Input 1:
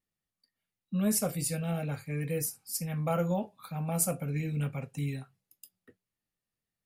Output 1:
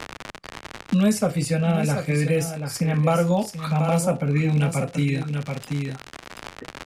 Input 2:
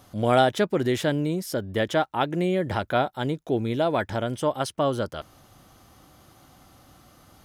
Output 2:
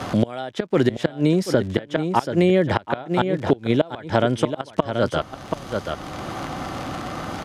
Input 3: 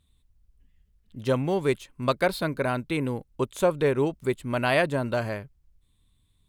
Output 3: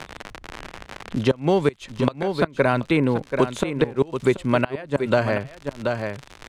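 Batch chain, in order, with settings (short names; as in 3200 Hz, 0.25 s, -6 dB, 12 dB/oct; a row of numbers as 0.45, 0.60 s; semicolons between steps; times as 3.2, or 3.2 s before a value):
gate -59 dBFS, range -8 dB; low shelf 120 Hz -4.5 dB; crackle 86/s -39 dBFS; flipped gate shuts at -14 dBFS, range -25 dB; air absorption 66 m; echo 0.732 s -11 dB; three-band squash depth 70%; match loudness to -23 LUFS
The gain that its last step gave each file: +12.5, +10.0, +9.0 dB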